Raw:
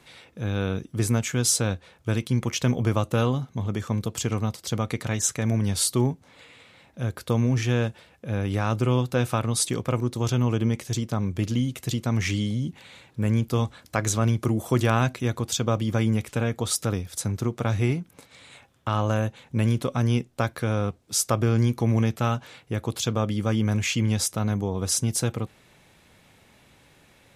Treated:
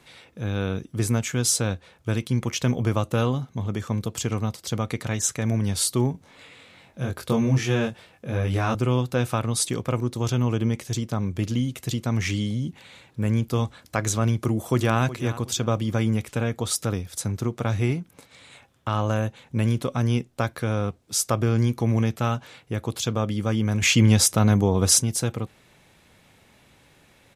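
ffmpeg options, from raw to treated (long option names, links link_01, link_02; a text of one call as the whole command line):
ffmpeg -i in.wav -filter_complex "[0:a]asettb=1/sr,asplit=3[link_01][link_02][link_03];[link_01]atrim=end=6.124[link_04];[link_02]atrim=start=6.12:end=8.75,asetpts=PTS-STARTPTS,afade=type=in:duration=0.004:curve=qsin,afade=type=out:start_time=2.626:duration=0.004:curve=qsin,asplit=2[link_05][link_06];[link_06]adelay=22,volume=-2dB[link_07];[link_05][link_07]amix=inputs=2:normalize=0,atrim=end_sample=115983[link_08];[link_03]atrim=start=8.746[link_09];[link_04][link_08]acrossfade=duration=0.004:curve1=hsin:curve2=qsin[link_10];[link_10][link_09]acrossfade=duration=0.004:curve1=qsin:curve2=hsin,asplit=2[link_11][link_12];[link_12]afade=type=in:start_time=14.44:duration=0.01,afade=type=out:start_time=15:duration=0.01,aecho=0:1:370|740|1110:0.188365|0.0565095|0.0169528[link_13];[link_11][link_13]amix=inputs=2:normalize=0,asplit=3[link_14][link_15][link_16];[link_14]atrim=end=23.822[link_17];[link_15]atrim=start=23.818:end=25.022,asetpts=PTS-STARTPTS,volume=7dB[link_18];[link_16]atrim=start=25.018[link_19];[link_17][link_18]acrossfade=duration=0.004:curve1=hsin:curve2=hsin[link_20];[link_20][link_19]acrossfade=duration=0.004:curve1=hsin:curve2=hsin" out.wav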